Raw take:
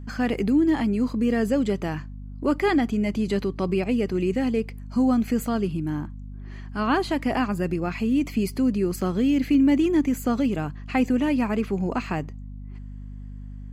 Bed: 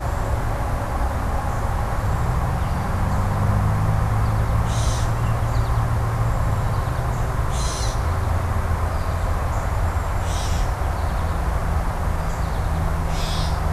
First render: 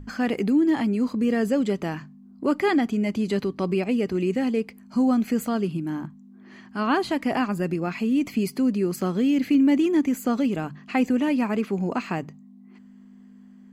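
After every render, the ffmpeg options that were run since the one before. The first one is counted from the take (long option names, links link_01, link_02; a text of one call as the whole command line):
ffmpeg -i in.wav -af "bandreject=frequency=50:width_type=h:width=6,bandreject=frequency=100:width_type=h:width=6,bandreject=frequency=150:width_type=h:width=6" out.wav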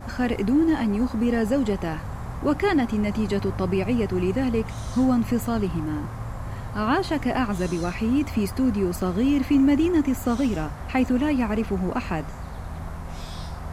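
ffmpeg -i in.wav -i bed.wav -filter_complex "[1:a]volume=-12dB[link_01];[0:a][link_01]amix=inputs=2:normalize=0" out.wav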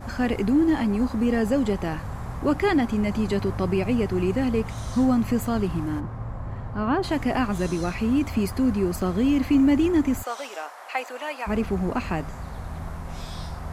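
ffmpeg -i in.wav -filter_complex "[0:a]asplit=3[link_01][link_02][link_03];[link_01]afade=type=out:start_time=5.99:duration=0.02[link_04];[link_02]lowpass=frequency=1100:poles=1,afade=type=in:start_time=5.99:duration=0.02,afade=type=out:start_time=7.02:duration=0.02[link_05];[link_03]afade=type=in:start_time=7.02:duration=0.02[link_06];[link_04][link_05][link_06]amix=inputs=3:normalize=0,asplit=3[link_07][link_08][link_09];[link_07]afade=type=out:start_time=10.22:duration=0.02[link_10];[link_08]highpass=frequency=560:width=0.5412,highpass=frequency=560:width=1.3066,afade=type=in:start_time=10.22:duration=0.02,afade=type=out:start_time=11.46:duration=0.02[link_11];[link_09]afade=type=in:start_time=11.46:duration=0.02[link_12];[link_10][link_11][link_12]amix=inputs=3:normalize=0" out.wav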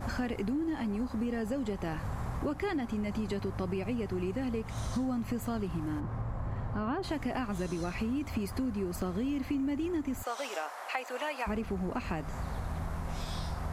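ffmpeg -i in.wav -af "acompressor=threshold=-31dB:ratio=6" out.wav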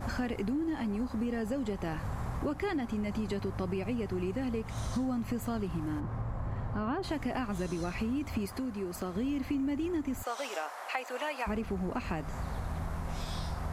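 ffmpeg -i in.wav -filter_complex "[0:a]asettb=1/sr,asplit=3[link_01][link_02][link_03];[link_01]atrim=end=8.464[link_04];[link_02]atrim=start=8.46:end=9.16,asetpts=PTS-STARTPTS,afade=type=in:duration=0.004:curve=qsin,afade=type=out:start_time=0.696:duration=0.004:curve=qsin,lowshelf=frequency=160:gain=-10[link_05];[link_03]atrim=start=9.156[link_06];[link_04][link_05]acrossfade=duration=0.004:curve1=hsin:curve2=qsin[link_07];[link_07][link_06]acrossfade=duration=0.004:curve1=qsin:curve2=hsin" out.wav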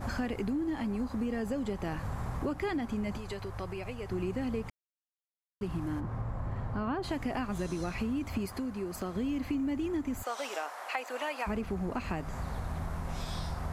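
ffmpeg -i in.wav -filter_complex "[0:a]asettb=1/sr,asplit=3[link_01][link_02][link_03];[link_01]atrim=end=3.174[link_04];[link_02]atrim=start=3.17:end=4.09,asetpts=PTS-STARTPTS,afade=type=in:duration=0.004:curve=qsin,afade=type=out:start_time=0.916:duration=0.004:curve=qsin,equalizer=frequency=230:width=1.2:gain=-12.5[link_05];[link_03]atrim=start=4.086[link_06];[link_04][link_05]acrossfade=duration=0.004:curve1=hsin:curve2=qsin[link_07];[link_07][link_06]acrossfade=duration=0.004:curve1=qsin:curve2=hsin,asplit=3[link_08][link_09][link_10];[link_08]atrim=end=4.7,asetpts=PTS-STARTPTS,afade=type=out:start_time=4.696:duration=0.004:curve=hsin[link_11];[link_09]atrim=start=4.7:end=5.61,asetpts=PTS-STARTPTS,volume=0[link_12];[link_10]atrim=start=5.61,asetpts=PTS-STARTPTS,afade=type=in:duration=0.004:curve=hsin[link_13];[link_11][link_12][link_13]concat=n=3:v=0:a=1" out.wav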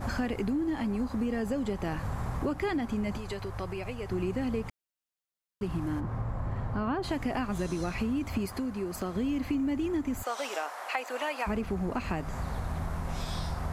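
ffmpeg -i in.wav -af "volume=2.5dB" out.wav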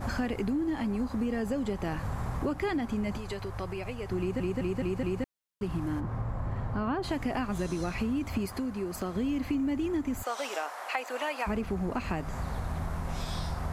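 ffmpeg -i in.wav -filter_complex "[0:a]asplit=6[link_01][link_02][link_03][link_04][link_05][link_06];[link_01]atrim=end=4.402[link_07];[link_02]atrim=start=4.188:end=4.402[link_08];[link_03]atrim=start=4.188:end=4.402[link_09];[link_04]atrim=start=4.188:end=4.402[link_10];[link_05]atrim=start=4.188:end=4.402[link_11];[link_06]atrim=start=5.238[link_12];[link_07][link_08]acrossfade=duration=0.004:curve1=hsin:curve2=hsin[link_13];[link_13][link_09]acrossfade=duration=0.004:curve1=hsin:curve2=hsin[link_14];[link_14][link_10]acrossfade=duration=0.004:curve1=hsin:curve2=hsin[link_15];[link_15][link_11]acrossfade=duration=0.004:curve1=hsin:curve2=hsin[link_16];[link_16][link_12]acrossfade=duration=0.004:curve1=hsin:curve2=hsin" out.wav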